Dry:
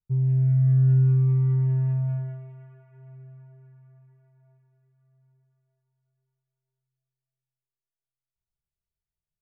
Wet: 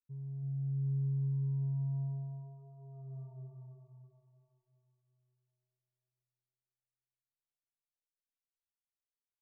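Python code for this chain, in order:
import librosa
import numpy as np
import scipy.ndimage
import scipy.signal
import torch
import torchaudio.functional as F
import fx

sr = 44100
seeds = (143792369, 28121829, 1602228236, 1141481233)

p1 = fx.doppler_pass(x, sr, speed_mps=15, closest_m=4.5, pass_at_s=3.25)
p2 = fx.brickwall_lowpass(p1, sr, high_hz=1200.0)
y = p2 + fx.echo_feedback(p2, sr, ms=328, feedback_pct=38, wet_db=-5, dry=0)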